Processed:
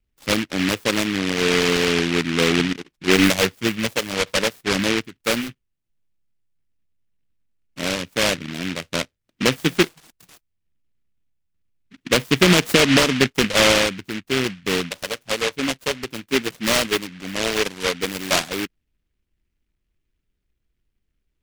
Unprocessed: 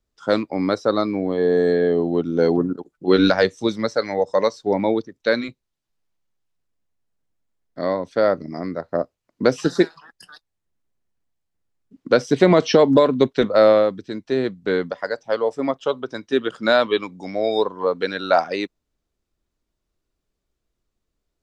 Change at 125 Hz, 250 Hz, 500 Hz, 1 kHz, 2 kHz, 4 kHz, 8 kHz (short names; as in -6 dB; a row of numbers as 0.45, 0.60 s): +2.5 dB, -0.5 dB, -5.5 dB, -2.5 dB, +6.5 dB, +9.5 dB, n/a